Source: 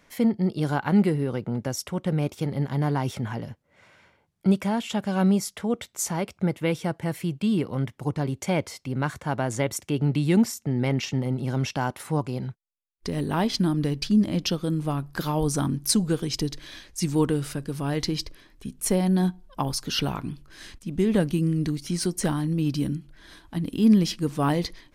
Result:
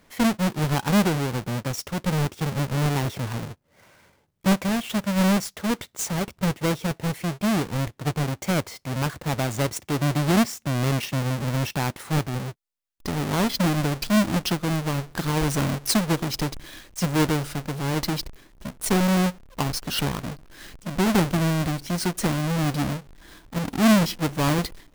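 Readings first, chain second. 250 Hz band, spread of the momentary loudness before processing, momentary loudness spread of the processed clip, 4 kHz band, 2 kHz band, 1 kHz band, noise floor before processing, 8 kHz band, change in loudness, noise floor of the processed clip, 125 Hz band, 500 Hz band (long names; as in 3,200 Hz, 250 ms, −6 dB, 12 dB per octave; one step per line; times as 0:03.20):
0.0 dB, 10 LU, 10 LU, +3.0 dB, +6.0 dB, +3.5 dB, −65 dBFS, +1.5 dB, +1.0 dB, −63 dBFS, +1.5 dB, +0.5 dB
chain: each half-wave held at its own peak
level −3 dB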